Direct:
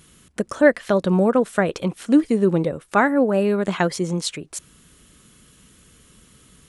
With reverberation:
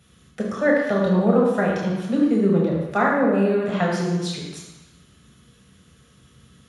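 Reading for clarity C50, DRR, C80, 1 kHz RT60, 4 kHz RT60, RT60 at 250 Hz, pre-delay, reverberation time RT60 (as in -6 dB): 1.5 dB, -3.0 dB, 3.5 dB, 1.2 s, 1.2 s, 1.0 s, 3 ms, 1.1 s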